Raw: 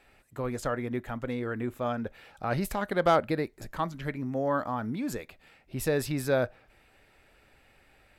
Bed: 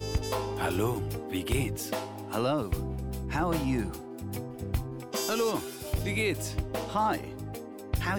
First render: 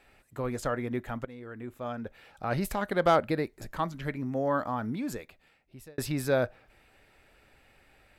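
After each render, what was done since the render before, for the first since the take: 1.25–2.65 fade in, from -15 dB; 4.91–5.98 fade out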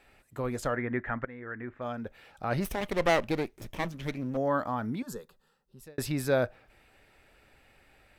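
0.76–1.82 synth low-pass 1800 Hz, resonance Q 3.5; 2.6–4.37 minimum comb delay 0.33 ms; 5.02–5.83 fixed phaser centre 450 Hz, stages 8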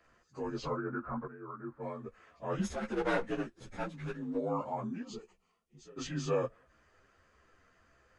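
inharmonic rescaling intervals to 85%; ensemble effect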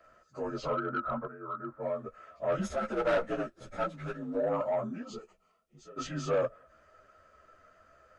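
small resonant body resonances 610/1300 Hz, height 16 dB, ringing for 40 ms; soft clip -22 dBFS, distortion -14 dB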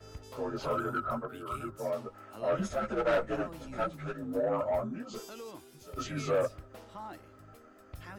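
add bed -17 dB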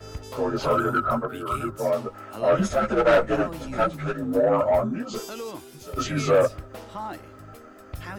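gain +10 dB

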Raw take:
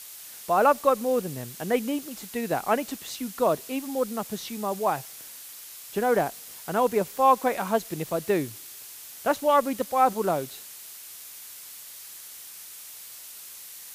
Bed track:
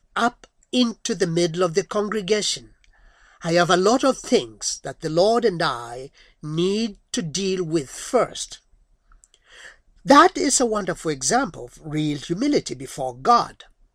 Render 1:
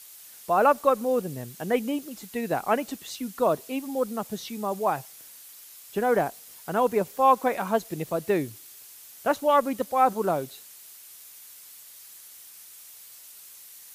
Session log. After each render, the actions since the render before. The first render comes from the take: denoiser 6 dB, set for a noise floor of -44 dBFS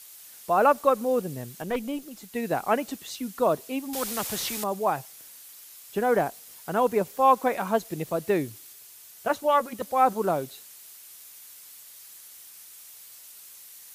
1.62–2.35 tube stage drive 21 dB, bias 0.6; 3.93–4.64 spectral compressor 2:1; 8.73–9.82 notch comb 270 Hz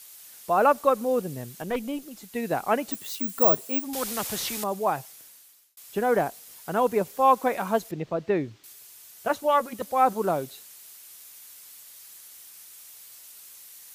2.92–3.84 careless resampling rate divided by 2×, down none, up zero stuff; 5.1–5.77 fade out; 7.91–8.64 air absorption 180 m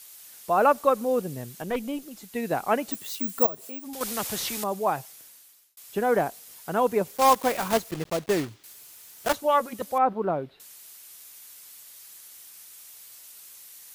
3.46–4.01 compressor 3:1, threshold -36 dBFS; 7.17–9.37 block floating point 3-bit; 9.98–10.6 air absorption 410 m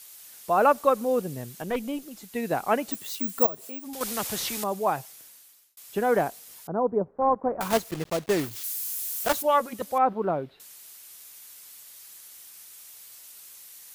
6.67–7.61 Bessel low-pass 760 Hz, order 6; 8.39–9.43 switching spikes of -28.5 dBFS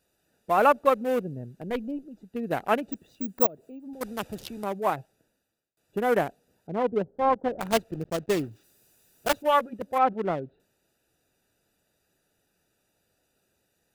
Wiener smoothing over 41 samples; dynamic EQ 2700 Hz, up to +5 dB, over -43 dBFS, Q 1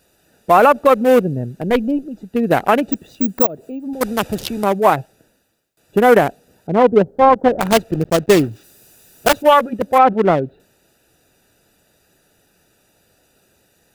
maximiser +14.5 dB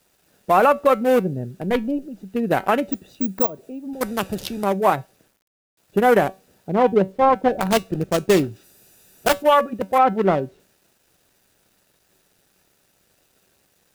resonator 190 Hz, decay 0.23 s, harmonics all, mix 50%; requantised 10-bit, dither none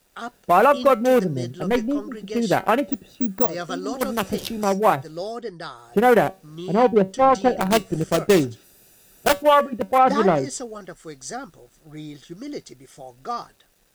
add bed track -13 dB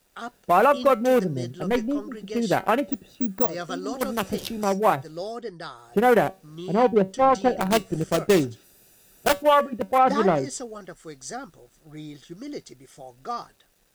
gain -2.5 dB

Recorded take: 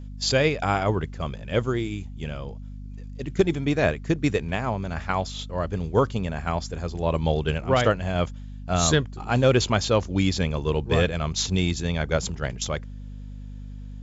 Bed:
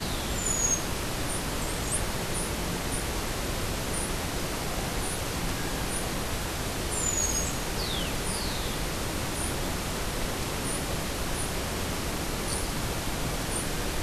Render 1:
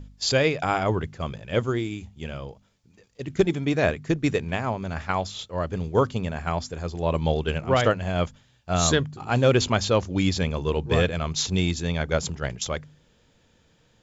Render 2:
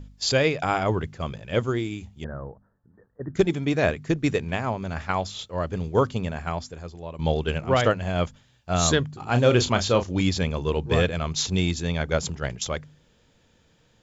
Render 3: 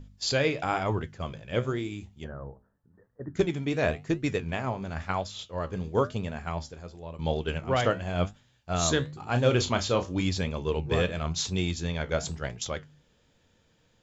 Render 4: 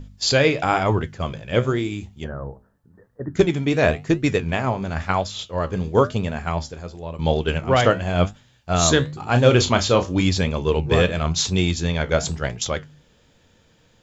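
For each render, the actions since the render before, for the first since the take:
de-hum 50 Hz, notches 5
2.24–3.35 steep low-pass 1800 Hz 96 dB/oct; 6.27–7.19 fade out, to -17 dB; 9.3–10.21 doubler 33 ms -9 dB
flange 0.95 Hz, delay 7.9 ms, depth 8.6 ms, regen +69%
gain +8.5 dB

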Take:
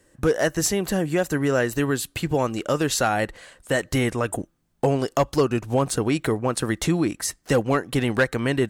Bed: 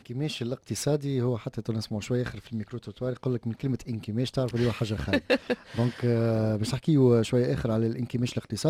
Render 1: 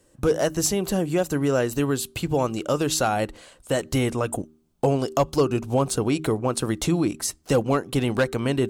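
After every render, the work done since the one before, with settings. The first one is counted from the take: bell 1800 Hz -9 dB 0.49 oct; de-hum 78.22 Hz, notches 5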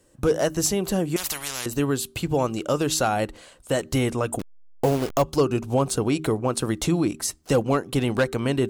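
1.16–1.66 spectral compressor 10:1; 4.39–5.22 level-crossing sampler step -28.5 dBFS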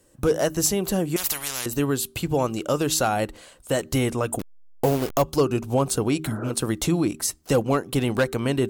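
6.27–6.48 spectral repair 260–1900 Hz; bell 16000 Hz +8.5 dB 0.65 oct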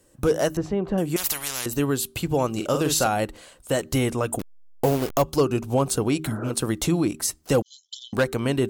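0.57–0.98 LPF 1500 Hz; 2.51–3.07 doubler 46 ms -6.5 dB; 7.62–8.13 brick-wall FIR band-pass 3000–7400 Hz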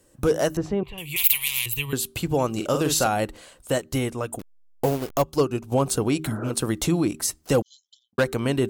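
0.83–1.93 EQ curve 130 Hz 0 dB, 220 Hz -26 dB, 420 Hz -15 dB, 640 Hz -21 dB, 1000 Hz -5 dB, 1500 Hz -20 dB, 2300 Hz +12 dB, 3500 Hz +7 dB, 5500 Hz -9 dB, 16000 Hz +12 dB; 3.78–5.72 upward expander, over -30 dBFS; 7.56–8.18 studio fade out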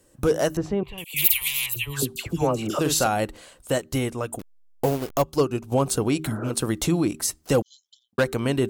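1.04–2.79 dispersion lows, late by 0.103 s, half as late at 1200 Hz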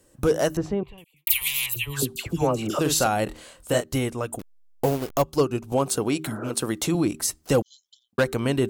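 0.62–1.27 studio fade out; 3.24–3.84 doubler 25 ms -4 dB; 5.72–6.95 HPF 190 Hz 6 dB/oct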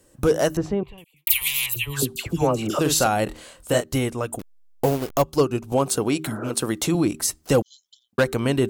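gain +2 dB

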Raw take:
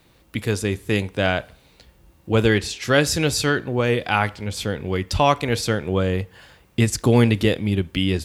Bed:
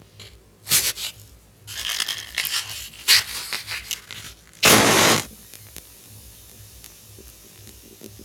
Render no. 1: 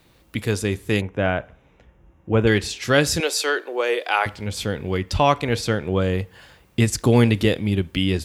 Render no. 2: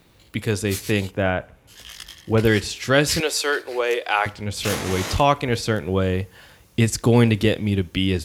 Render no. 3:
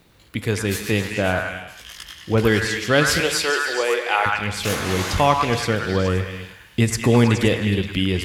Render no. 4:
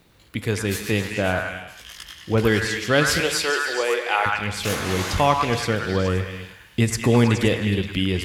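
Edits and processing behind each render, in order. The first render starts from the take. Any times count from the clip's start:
1.01–2.47 running mean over 10 samples; 3.2–4.26 steep high-pass 360 Hz; 4.98–6.02 high shelf 6000 Hz -5.5 dB
add bed -14 dB
delay with a stepping band-pass 0.105 s, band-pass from 1300 Hz, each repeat 0.7 oct, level 0 dB; non-linear reverb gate 0.34 s flat, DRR 11 dB
gain -1.5 dB

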